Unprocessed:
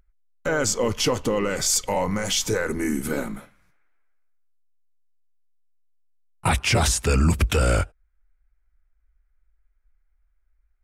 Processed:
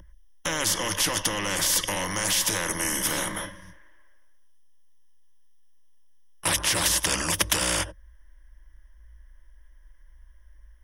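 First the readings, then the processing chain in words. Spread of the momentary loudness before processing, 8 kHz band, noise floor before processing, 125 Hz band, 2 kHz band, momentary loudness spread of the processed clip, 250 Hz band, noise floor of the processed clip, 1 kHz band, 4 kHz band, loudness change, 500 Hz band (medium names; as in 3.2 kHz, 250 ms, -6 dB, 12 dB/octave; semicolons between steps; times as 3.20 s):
9 LU, +2.0 dB, -67 dBFS, -12.0 dB, 0.0 dB, 8 LU, -8.0 dB, -53 dBFS, -3.0 dB, +2.0 dB, -1.5 dB, -9.0 dB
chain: rippled EQ curve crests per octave 1.2, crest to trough 18 dB; spectrum-flattening compressor 4:1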